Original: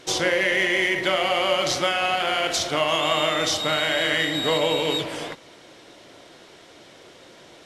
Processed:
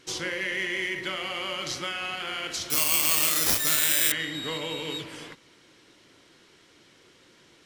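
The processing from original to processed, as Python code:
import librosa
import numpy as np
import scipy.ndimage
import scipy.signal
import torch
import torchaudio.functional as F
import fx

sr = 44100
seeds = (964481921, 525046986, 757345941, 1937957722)

y = fx.peak_eq(x, sr, hz=660.0, db=-12.0, octaves=0.79)
y = fx.notch(y, sr, hz=3600.0, q=18.0)
y = fx.resample_bad(y, sr, factor=8, down='none', up='zero_stuff', at=(2.7, 4.12))
y = F.gain(torch.from_numpy(y), -7.0).numpy()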